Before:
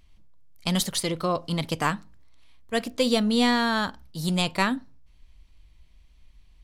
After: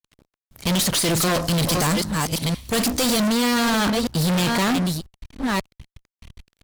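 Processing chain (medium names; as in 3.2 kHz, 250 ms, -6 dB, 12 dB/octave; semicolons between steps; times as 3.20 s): chunks repeated in reverse 509 ms, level -13 dB; 1.10–3.28 s: tone controls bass +4 dB, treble +13 dB; fuzz box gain 40 dB, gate -47 dBFS; trim -5.5 dB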